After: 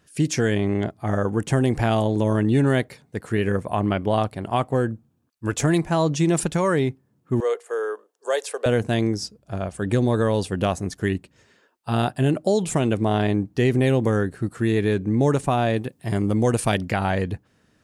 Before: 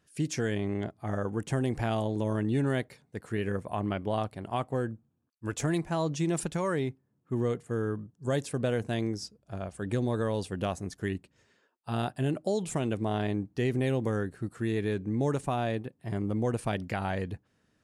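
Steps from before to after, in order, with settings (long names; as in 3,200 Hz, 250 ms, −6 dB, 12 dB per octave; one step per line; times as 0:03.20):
0:07.40–0:08.66: elliptic high-pass filter 440 Hz, stop band 70 dB
0:15.76–0:16.78: high-shelf EQ 3,400 Hz +8.5 dB
level +9 dB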